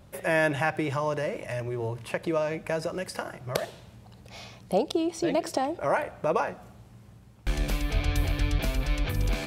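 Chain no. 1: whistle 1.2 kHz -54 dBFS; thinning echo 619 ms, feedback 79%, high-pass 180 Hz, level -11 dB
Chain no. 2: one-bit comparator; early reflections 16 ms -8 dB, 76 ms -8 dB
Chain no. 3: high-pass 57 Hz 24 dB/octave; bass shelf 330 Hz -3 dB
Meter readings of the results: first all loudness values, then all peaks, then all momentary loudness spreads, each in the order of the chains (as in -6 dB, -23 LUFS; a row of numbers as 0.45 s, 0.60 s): -29.0 LUFS, -27.5 LUFS, -30.5 LUFS; -10.0 dBFS, -23.5 dBFS, -11.5 dBFS; 11 LU, 3 LU, 10 LU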